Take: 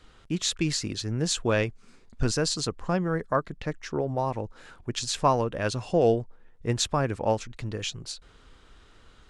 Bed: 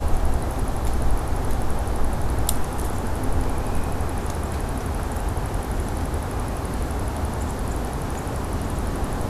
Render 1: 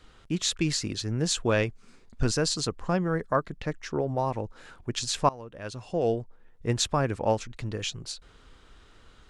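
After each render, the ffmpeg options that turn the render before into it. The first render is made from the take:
ffmpeg -i in.wav -filter_complex "[0:a]asplit=2[link_01][link_02];[link_01]atrim=end=5.29,asetpts=PTS-STARTPTS,afade=type=out:start_time=5.286:duration=0.004:curve=hsin:silence=0.0841395[link_03];[link_02]atrim=start=5.29,asetpts=PTS-STARTPTS,afade=type=in:duration=1.38:silence=0.0841395[link_04];[link_03][link_04]concat=n=2:v=0:a=1" out.wav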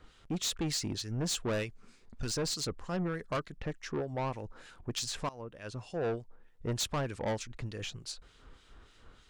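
ffmpeg -i in.wav -filter_complex "[0:a]acrossover=split=2000[link_01][link_02];[link_01]aeval=exprs='val(0)*(1-0.7/2+0.7/2*cos(2*PI*3.3*n/s))':channel_layout=same[link_03];[link_02]aeval=exprs='val(0)*(1-0.7/2-0.7/2*cos(2*PI*3.3*n/s))':channel_layout=same[link_04];[link_03][link_04]amix=inputs=2:normalize=0,asoftclip=type=tanh:threshold=-28.5dB" out.wav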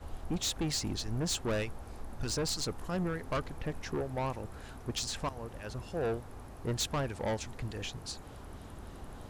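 ffmpeg -i in.wav -i bed.wav -filter_complex "[1:a]volume=-21.5dB[link_01];[0:a][link_01]amix=inputs=2:normalize=0" out.wav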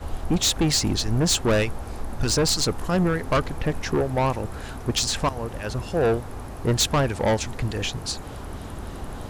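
ffmpeg -i in.wav -af "volume=12dB" out.wav

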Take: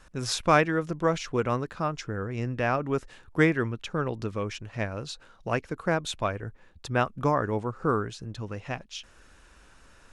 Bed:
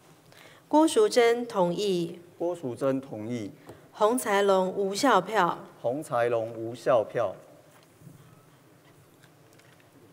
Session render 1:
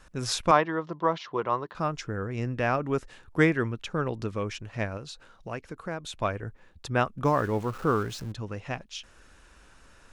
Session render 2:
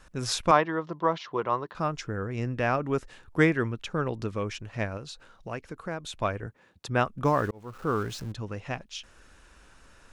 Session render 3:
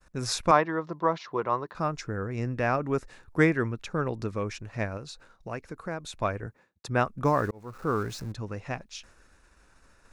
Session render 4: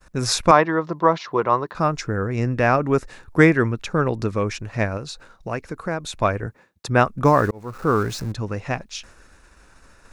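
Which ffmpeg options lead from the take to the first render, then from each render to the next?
ffmpeg -i in.wav -filter_complex "[0:a]asettb=1/sr,asplit=3[link_01][link_02][link_03];[link_01]atrim=end=0.514[link_04];[link_02]atrim=start=0.51:end=1.75,asetpts=PTS-STARTPTS,afade=type=in:duration=0.004:curve=qsin,afade=type=out:start_time=1.236:duration=0.004:curve=qsin,highpass=210,equalizer=frequency=250:width_type=q:width=4:gain=-10,equalizer=frequency=470:width_type=q:width=4:gain=-3,equalizer=frequency=1000:width_type=q:width=4:gain=8,equalizer=frequency=1500:width_type=q:width=4:gain=-5,equalizer=frequency=2400:width_type=q:width=4:gain=-9,lowpass=frequency=4300:width=0.5412,lowpass=frequency=4300:width=1.3066[link_05];[link_03]atrim=start=1.746[link_06];[link_04][link_05]acrossfade=duration=0.004:curve1=hsin:curve2=qsin[link_07];[link_07][link_06]acrossfade=duration=0.004:curve1=qsin:curve2=hsin,asettb=1/sr,asplit=3[link_08][link_09][link_10];[link_08]atrim=end=4.974[link_11];[link_09]atrim=start=4.97:end=6.21,asetpts=PTS-STARTPTS,afade=type=in:duration=0.004:curve=qsin,afade=type=out:start_time=1.236:duration=0.004:curve=qsin,acompressor=threshold=-44dB:ratio=1.5:attack=3.2:release=140:knee=1:detection=peak[link_12];[link_10]atrim=start=6.206[link_13];[link_11][link_12]acrossfade=duration=0.004:curve1=hsin:curve2=qsin[link_14];[link_14][link_13]acrossfade=duration=0.004:curve1=qsin:curve2=hsin,asettb=1/sr,asplit=3[link_15][link_16][link_17];[link_15]atrim=end=7.254[link_18];[link_16]atrim=start=7.25:end=8.32,asetpts=PTS-STARTPTS,afade=type=in:duration=0.004:curve=qsin,afade=type=out:start_time=1.066:duration=0.004:curve=qsin,aeval=exprs='val(0)+0.5*0.01*sgn(val(0))':channel_layout=same[link_19];[link_17]atrim=start=8.316[link_20];[link_18][link_19]acrossfade=duration=0.004:curve1=hsin:curve2=qsin[link_21];[link_21][link_20]acrossfade=duration=0.004:curve1=qsin:curve2=hsin" out.wav
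ffmpeg -i in.wav -filter_complex "[0:a]asettb=1/sr,asplit=3[link_01][link_02][link_03];[link_01]atrim=end=6.464[link_04];[link_02]atrim=start=6.46:end=6.89,asetpts=PTS-STARTPTS,afade=type=in:duration=0.004:curve=qsin,afade=type=out:start_time=0.426:duration=0.004:curve=qsin,highpass=120[link_05];[link_03]atrim=start=6.886[link_06];[link_04][link_05]acrossfade=duration=0.004:curve1=hsin:curve2=qsin[link_07];[link_07][link_06]acrossfade=duration=0.004:curve1=qsin:curve2=hsin,asplit=2[link_08][link_09];[link_08]atrim=end=7.51,asetpts=PTS-STARTPTS,afade=type=out:start_time=7.506:duration=0.004:curve=hsin[link_10];[link_09]atrim=start=7.51,asetpts=PTS-STARTPTS,afade=type=in:duration=0.56[link_11];[link_10][link_11]concat=n=2:v=0:a=1" out.wav
ffmpeg -i in.wav -af "agate=range=-33dB:threshold=-49dB:ratio=3:detection=peak,equalizer=frequency=3100:width=4.5:gain=-8.5" out.wav
ffmpeg -i in.wav -af "volume=8.5dB,alimiter=limit=-1dB:level=0:latency=1" out.wav

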